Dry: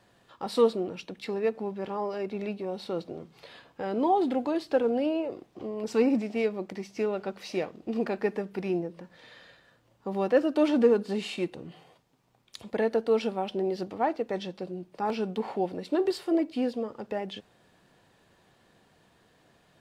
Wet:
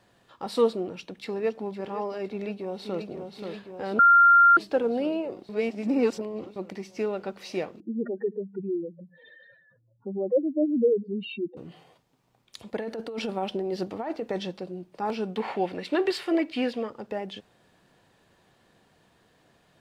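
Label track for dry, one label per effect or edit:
0.870000	1.790000	delay throw 510 ms, feedback 50%, level −14 dB
2.290000	3.060000	delay throw 530 ms, feedback 75%, level −6 dB
3.990000	4.570000	beep over 1,390 Hz −12.5 dBFS
5.490000	6.560000	reverse
7.800000	11.570000	expanding power law on the bin magnitudes exponent 3.5
12.780000	14.600000	compressor whose output falls as the input rises −30 dBFS
15.360000	16.900000	parametric band 2,200 Hz +12 dB 1.8 octaves

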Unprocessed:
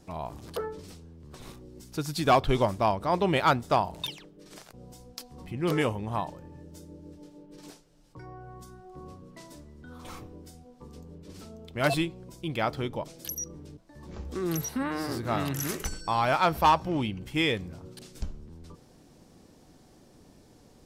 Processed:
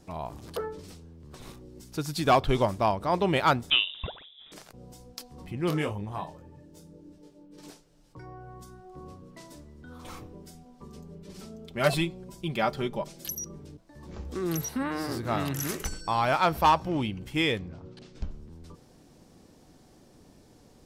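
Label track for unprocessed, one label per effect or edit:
3.700000	4.520000	voice inversion scrambler carrier 3,700 Hz
5.700000	7.560000	micro pitch shift up and down each way 26 cents → 11 cents
10.330000	13.640000	comb filter 5.1 ms, depth 62%
17.590000	18.310000	high-frequency loss of the air 140 metres

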